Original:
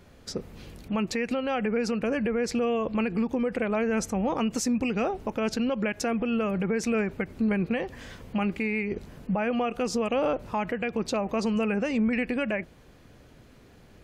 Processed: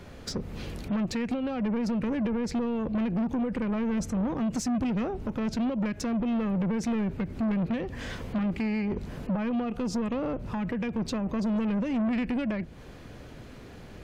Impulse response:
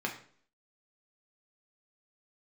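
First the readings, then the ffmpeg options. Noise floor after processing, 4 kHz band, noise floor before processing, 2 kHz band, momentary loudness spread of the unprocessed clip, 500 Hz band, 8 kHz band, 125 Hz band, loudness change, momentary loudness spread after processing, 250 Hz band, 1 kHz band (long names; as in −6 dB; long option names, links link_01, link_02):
−46 dBFS, −4.0 dB, −54 dBFS, −7.5 dB, 7 LU, −6.5 dB, −5.0 dB, +2.5 dB, −1.5 dB, 9 LU, +0.5 dB, −5.5 dB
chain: -filter_complex "[0:a]highshelf=frequency=8000:gain=-7,acrossover=split=280[link_01][link_02];[link_02]acompressor=threshold=-40dB:ratio=6[link_03];[link_01][link_03]amix=inputs=2:normalize=0,asoftclip=type=tanh:threshold=-32.5dB,volume=8dB"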